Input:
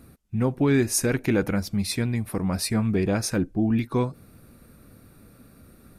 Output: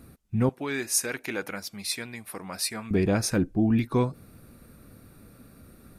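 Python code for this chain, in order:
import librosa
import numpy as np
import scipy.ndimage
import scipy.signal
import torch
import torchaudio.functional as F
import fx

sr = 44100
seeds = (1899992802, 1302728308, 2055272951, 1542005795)

y = fx.highpass(x, sr, hz=1200.0, slope=6, at=(0.49, 2.91))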